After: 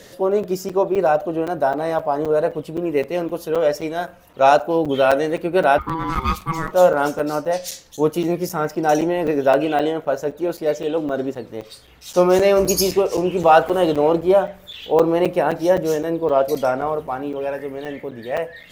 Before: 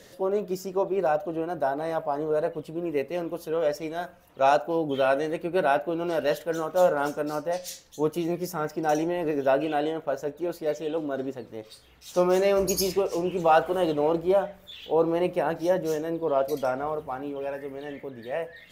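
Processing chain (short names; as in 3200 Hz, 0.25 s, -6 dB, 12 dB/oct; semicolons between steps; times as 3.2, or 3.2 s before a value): 5.78–6.72 ring modulator 650 Hz; crackling interface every 0.26 s, samples 256, zero, from 0.43; gain +7.5 dB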